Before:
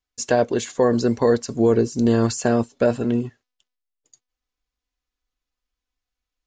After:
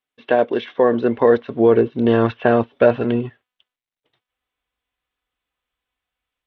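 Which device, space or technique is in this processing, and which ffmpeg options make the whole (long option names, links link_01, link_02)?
Bluetooth headset: -af "asubboost=boost=9.5:cutoff=84,highpass=230,dynaudnorm=framelen=640:gausssize=3:maxgain=5.5dB,aresample=8000,aresample=44100,volume=2.5dB" -ar 32000 -c:a sbc -b:a 64k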